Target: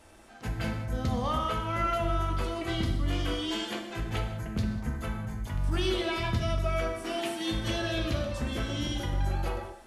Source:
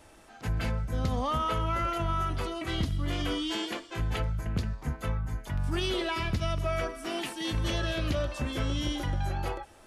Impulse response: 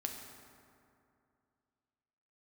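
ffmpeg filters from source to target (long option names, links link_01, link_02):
-filter_complex "[1:a]atrim=start_sample=2205,afade=type=out:start_time=0.23:duration=0.01,atrim=end_sample=10584,asetrate=38808,aresample=44100[link_01];[0:a][link_01]afir=irnorm=-1:irlink=0"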